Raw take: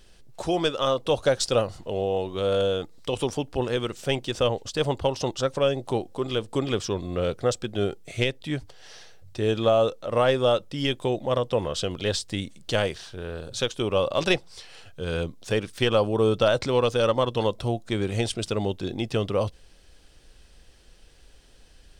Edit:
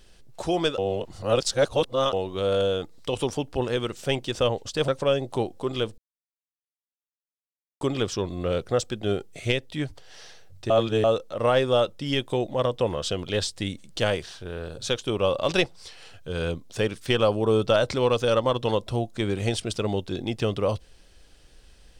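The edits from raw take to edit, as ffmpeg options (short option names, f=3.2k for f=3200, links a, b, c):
-filter_complex "[0:a]asplit=7[a][b][c][d][e][f][g];[a]atrim=end=0.782[h];[b]atrim=start=0.778:end=2.132,asetpts=PTS-STARTPTS,areverse[i];[c]atrim=start=2.128:end=4.882[j];[d]atrim=start=5.428:end=6.53,asetpts=PTS-STARTPTS,afade=t=out:st=1.098:d=0.004:c=hsin,apad=pad_dur=1.83[k];[e]atrim=start=6.53:end=9.422,asetpts=PTS-STARTPTS,afade=t=in:d=0.004:c=hsin[l];[f]atrim=start=9.418:end=9.762,asetpts=PTS-STARTPTS,areverse[m];[g]atrim=start=9.758[n];[h][i]acrossfade=d=0.004:c1=hsin:c2=hsin[o];[o][j]acrossfade=d=0.004:c1=hsin:c2=hsin[p];[k][l]concat=n=2:v=0:a=1[q];[p][q]acrossfade=d=0.004:c1=hsin:c2=hsin[r];[r][m]acrossfade=d=0.004:c1=hsin:c2=hsin[s];[s][n]acrossfade=d=0.004:c1=hsin:c2=hsin"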